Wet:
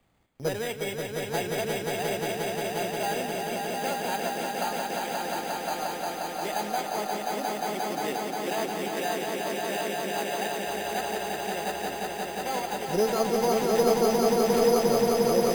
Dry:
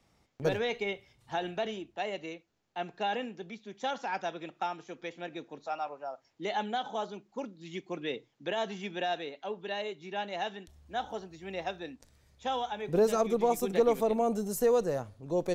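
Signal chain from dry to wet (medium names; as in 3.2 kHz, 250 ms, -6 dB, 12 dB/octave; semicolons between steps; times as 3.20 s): careless resampling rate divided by 8×, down none, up hold; echo with a slow build-up 177 ms, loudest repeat 5, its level -4 dB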